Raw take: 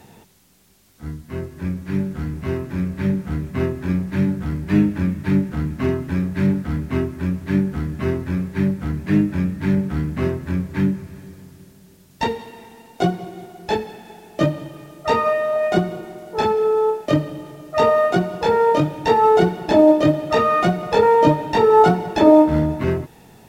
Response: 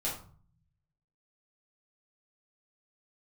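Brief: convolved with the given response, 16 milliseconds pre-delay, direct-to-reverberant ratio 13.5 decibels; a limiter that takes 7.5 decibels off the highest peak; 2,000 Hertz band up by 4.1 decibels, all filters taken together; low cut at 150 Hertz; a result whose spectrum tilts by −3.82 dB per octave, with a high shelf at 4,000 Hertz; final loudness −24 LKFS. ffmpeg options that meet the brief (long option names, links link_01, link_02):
-filter_complex "[0:a]highpass=150,equalizer=frequency=2000:width_type=o:gain=6.5,highshelf=frequency=4000:gain=-7,alimiter=limit=-9dB:level=0:latency=1,asplit=2[link_01][link_02];[1:a]atrim=start_sample=2205,adelay=16[link_03];[link_02][link_03]afir=irnorm=-1:irlink=0,volume=-17.5dB[link_04];[link_01][link_04]amix=inputs=2:normalize=0,volume=-2.5dB"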